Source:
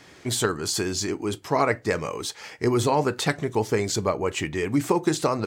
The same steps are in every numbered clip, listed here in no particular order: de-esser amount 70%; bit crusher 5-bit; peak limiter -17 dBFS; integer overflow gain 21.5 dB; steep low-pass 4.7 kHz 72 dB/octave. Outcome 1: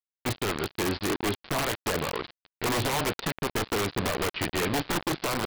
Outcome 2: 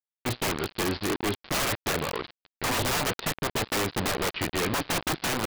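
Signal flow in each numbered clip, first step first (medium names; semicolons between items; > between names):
peak limiter > de-esser > bit crusher > steep low-pass > integer overflow; de-esser > bit crusher > steep low-pass > integer overflow > peak limiter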